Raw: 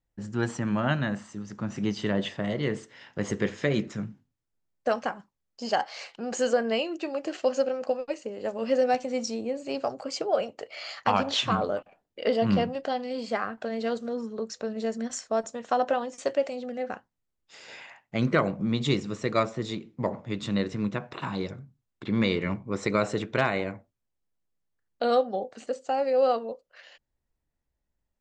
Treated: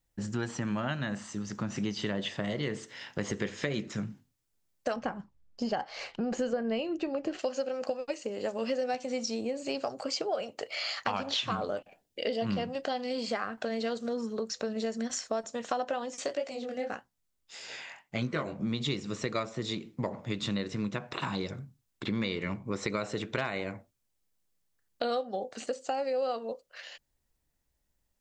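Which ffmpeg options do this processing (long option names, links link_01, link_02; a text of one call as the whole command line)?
ffmpeg -i in.wav -filter_complex "[0:a]asettb=1/sr,asplit=3[link_01][link_02][link_03];[link_01]atrim=end=4.964[link_04];[link_02]atrim=start=4.96:end=7.39,asetpts=PTS-STARTPTS,afade=type=in:duration=0.004:curve=qsin,afade=type=out:start_time=2.426:duration=0.004:curve=qsin,aemphasis=mode=reproduction:type=riaa[link_05];[link_03]atrim=start=7.386[link_06];[link_04][link_05]acrossfade=duration=0.004:curve1=hsin:curve2=qsin[link_07];[link_07][link_06]acrossfade=duration=0.004:curve1=qsin:curve2=hsin,asettb=1/sr,asplit=3[link_08][link_09][link_10];[link_08]atrim=end=11.774[link_11];[link_09]atrim=start=11.77:end=12.41,asetpts=PTS-STARTPTS,afade=type=in:duration=0.004:curve=qsin,afade=type=out:start_time=0.636:duration=0.004:curve=qsin,equalizer=frequency=1200:width_type=o:width=0.77:gain=-10[link_12];[link_10]atrim=start=12.406[link_13];[link_11][link_12]acrossfade=duration=0.004:curve1=hsin:curve2=qsin[link_14];[link_14][link_13]acrossfade=duration=0.004:curve1=qsin:curve2=hsin,asplit=3[link_15][link_16][link_17];[link_15]afade=type=out:start_time=16.24:duration=0.02[link_18];[link_16]flanger=delay=16:depth=7.7:speed=1.7,afade=type=in:start_time=16.24:duration=0.02,afade=type=out:start_time=18.63:duration=0.02[link_19];[link_17]afade=type=in:start_time=18.63:duration=0.02[link_20];[link_18][link_19][link_20]amix=inputs=3:normalize=0,acrossover=split=5900[link_21][link_22];[link_22]acompressor=threshold=-57dB:ratio=4:attack=1:release=60[link_23];[link_21][link_23]amix=inputs=2:normalize=0,highshelf=frequency=3200:gain=9,acompressor=threshold=-32dB:ratio=4,volume=2dB" out.wav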